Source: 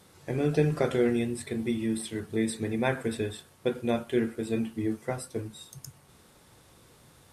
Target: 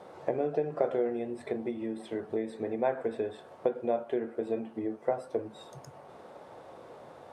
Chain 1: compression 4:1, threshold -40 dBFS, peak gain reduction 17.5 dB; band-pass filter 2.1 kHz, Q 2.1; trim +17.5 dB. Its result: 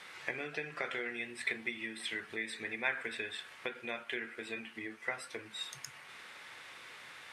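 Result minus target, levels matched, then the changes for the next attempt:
2 kHz band +19.5 dB
change: band-pass filter 640 Hz, Q 2.1

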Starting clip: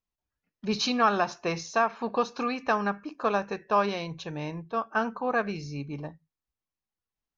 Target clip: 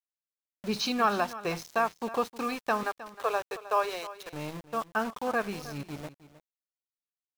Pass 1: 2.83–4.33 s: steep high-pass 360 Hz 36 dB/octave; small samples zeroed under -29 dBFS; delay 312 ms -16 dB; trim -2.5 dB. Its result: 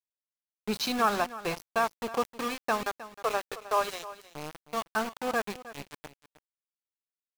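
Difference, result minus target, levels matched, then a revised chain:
small samples zeroed: distortion +8 dB
2.83–4.33 s: steep high-pass 360 Hz 36 dB/octave; small samples zeroed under -36 dBFS; delay 312 ms -16 dB; trim -2.5 dB

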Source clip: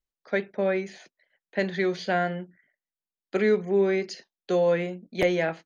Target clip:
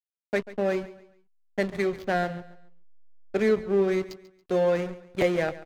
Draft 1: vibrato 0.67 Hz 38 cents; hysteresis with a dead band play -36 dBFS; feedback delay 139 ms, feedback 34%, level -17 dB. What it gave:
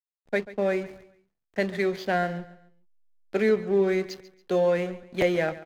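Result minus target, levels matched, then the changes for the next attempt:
hysteresis with a dead band: distortion -8 dB
change: hysteresis with a dead band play -27 dBFS

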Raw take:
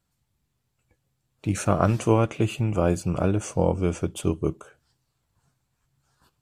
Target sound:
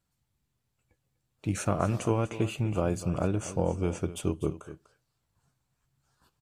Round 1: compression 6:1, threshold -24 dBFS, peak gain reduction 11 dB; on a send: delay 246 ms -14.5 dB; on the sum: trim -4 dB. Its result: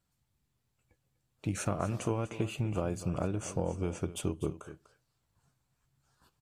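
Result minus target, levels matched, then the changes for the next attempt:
compression: peak gain reduction +6 dB
change: compression 6:1, threshold -17 dBFS, peak gain reduction 5 dB

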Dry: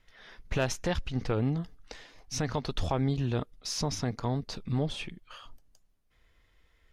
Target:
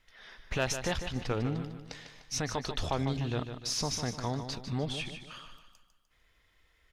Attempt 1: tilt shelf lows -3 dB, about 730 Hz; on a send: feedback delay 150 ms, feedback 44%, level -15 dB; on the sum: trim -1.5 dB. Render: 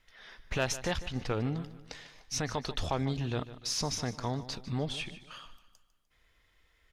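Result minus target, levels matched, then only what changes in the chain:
echo-to-direct -6 dB
change: feedback delay 150 ms, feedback 44%, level -9 dB

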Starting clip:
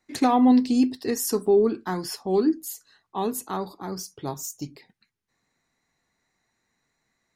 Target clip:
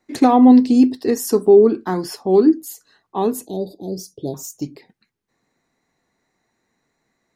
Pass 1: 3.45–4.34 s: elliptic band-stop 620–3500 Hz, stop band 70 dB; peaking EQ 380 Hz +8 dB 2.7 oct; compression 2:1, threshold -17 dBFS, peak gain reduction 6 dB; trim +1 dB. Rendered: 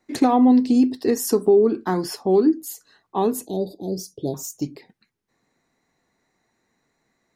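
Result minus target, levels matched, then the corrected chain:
compression: peak gain reduction +6 dB
3.45–4.34 s: elliptic band-stop 620–3500 Hz, stop band 70 dB; peaking EQ 380 Hz +8 dB 2.7 oct; trim +1 dB

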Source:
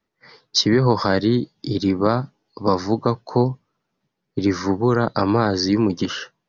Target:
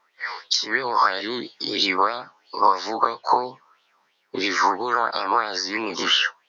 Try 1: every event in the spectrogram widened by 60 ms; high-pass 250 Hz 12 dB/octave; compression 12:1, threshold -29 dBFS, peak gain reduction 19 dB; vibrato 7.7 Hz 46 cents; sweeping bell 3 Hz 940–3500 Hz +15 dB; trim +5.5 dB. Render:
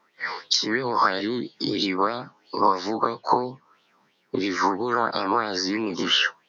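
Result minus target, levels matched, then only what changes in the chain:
250 Hz band +7.0 dB
change: high-pass 600 Hz 12 dB/octave

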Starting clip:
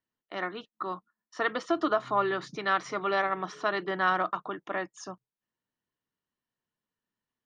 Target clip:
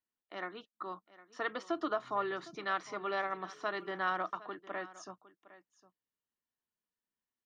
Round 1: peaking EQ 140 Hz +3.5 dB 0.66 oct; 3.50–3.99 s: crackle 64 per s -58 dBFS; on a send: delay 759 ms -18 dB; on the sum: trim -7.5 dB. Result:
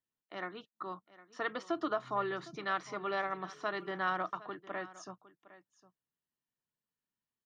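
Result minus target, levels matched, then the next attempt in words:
125 Hz band +4.5 dB
peaking EQ 140 Hz -6.5 dB 0.66 oct; 3.50–3.99 s: crackle 64 per s -58 dBFS; on a send: delay 759 ms -18 dB; on the sum: trim -7.5 dB

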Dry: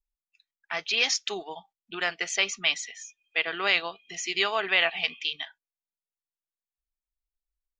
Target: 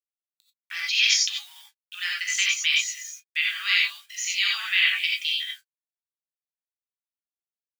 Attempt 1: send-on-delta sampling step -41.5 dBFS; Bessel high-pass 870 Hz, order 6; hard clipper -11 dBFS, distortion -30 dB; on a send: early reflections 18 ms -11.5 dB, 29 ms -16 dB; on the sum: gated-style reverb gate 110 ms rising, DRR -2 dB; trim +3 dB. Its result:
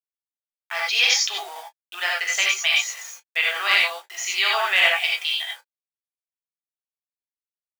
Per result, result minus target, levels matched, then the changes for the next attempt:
1 kHz band +13.5 dB; send-on-delta sampling: distortion +8 dB
change: Bessel high-pass 2.5 kHz, order 6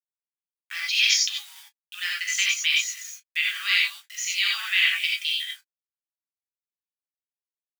send-on-delta sampling: distortion +8 dB
change: send-on-delta sampling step -48 dBFS

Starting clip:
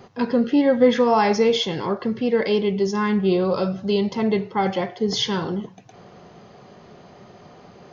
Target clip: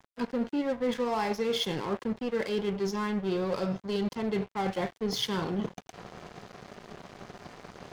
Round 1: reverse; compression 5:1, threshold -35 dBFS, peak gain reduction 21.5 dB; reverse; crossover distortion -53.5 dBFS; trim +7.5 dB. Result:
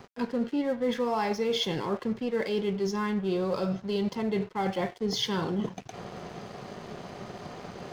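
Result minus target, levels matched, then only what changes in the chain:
crossover distortion: distortion -7 dB
change: crossover distortion -45.5 dBFS

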